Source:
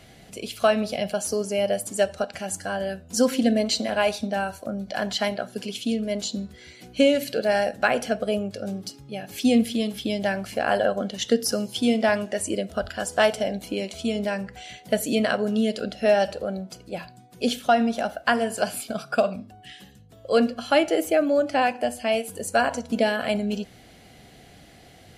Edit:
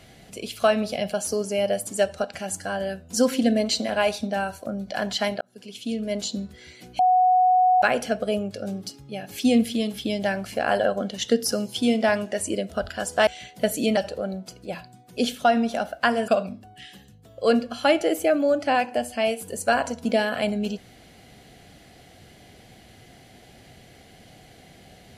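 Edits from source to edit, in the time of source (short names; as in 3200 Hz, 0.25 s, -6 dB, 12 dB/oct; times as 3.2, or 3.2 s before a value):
5.41–6.14 fade in
6.99–7.82 bleep 737 Hz -14.5 dBFS
13.27–14.56 cut
15.26–16.21 cut
18.52–19.15 cut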